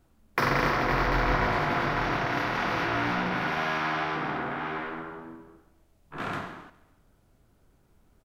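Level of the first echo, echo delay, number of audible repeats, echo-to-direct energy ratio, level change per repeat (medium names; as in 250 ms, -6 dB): -19.5 dB, 137 ms, 3, -18.5 dB, -6.5 dB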